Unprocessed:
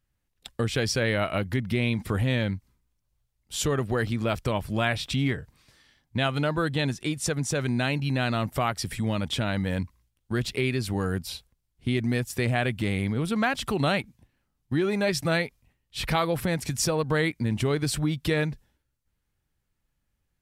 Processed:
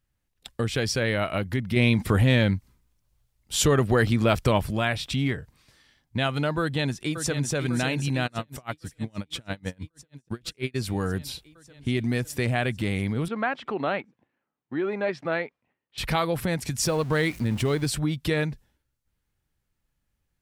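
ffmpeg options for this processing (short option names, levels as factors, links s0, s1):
-filter_complex "[0:a]asettb=1/sr,asplit=3[s0][s1][s2];[s0]atrim=end=1.764[s3];[s1]atrim=start=1.76:end=4.71,asetpts=PTS-STARTPTS,afade=t=in:d=0.004:c=qsin,afade=t=out:st=2.946:d=0.004:c=qsin,acontrast=40[s4];[s2]atrim=start=4.706[s5];[s3][s4]acrossfade=d=0.004:c1=hsin:c2=qsin[s6];[s6][s5]acrossfade=d=0.004:c1=qsin:c2=hsin,asplit=2[s7][s8];[s8]afade=t=in:st=6.6:d=0.01,afade=t=out:st=7.53:d=0.01,aecho=0:1:550|1100|1650|2200|2750|3300|3850|4400|4950|5500|6050|6600:0.375837|0.281878|0.211409|0.158556|0.118917|0.089188|0.066891|0.0501682|0.0376262|0.0282196|0.0211647|0.0158735[s9];[s7][s9]amix=inputs=2:normalize=0,asplit=3[s10][s11][s12];[s10]afade=t=out:st=8.26:d=0.02[s13];[s11]aeval=exprs='val(0)*pow(10,-35*(0.5-0.5*cos(2*PI*6.2*n/s))/20)':c=same,afade=t=in:st=8.26:d=0.02,afade=t=out:st=10.74:d=0.02[s14];[s12]afade=t=in:st=10.74:d=0.02[s15];[s13][s14][s15]amix=inputs=3:normalize=0,asettb=1/sr,asplit=3[s16][s17][s18];[s16]atrim=end=13.284[s19];[s17]atrim=start=13.28:end=15.98,asetpts=PTS-STARTPTS,afade=t=in:d=0.004:c=qsin,afade=t=out:st=2.696:d=0.004:c=qsin,highpass=290,lowpass=2000[s20];[s18]atrim=start=15.976[s21];[s19][s20]acrossfade=d=0.004:c1=hsin:c2=qsin[s22];[s22][s21]acrossfade=d=0.004:c1=qsin:c2=hsin,asettb=1/sr,asplit=3[s23][s24][s25];[s23]atrim=end=16.854[s26];[s24]atrim=start=16.85:end=17.87,asetpts=PTS-STARTPTS,afade=t=in:d=0.004:c=qsin,afade=t=out:st=1.016:d=0.004:c=qsin,aeval=exprs='val(0)+0.5*0.0133*sgn(val(0))':c=same[s27];[s25]atrim=start=17.866[s28];[s26][s27]acrossfade=d=0.004:c1=hsin:c2=qsin[s29];[s29][s28]acrossfade=d=0.004:c1=qsin:c2=hsin"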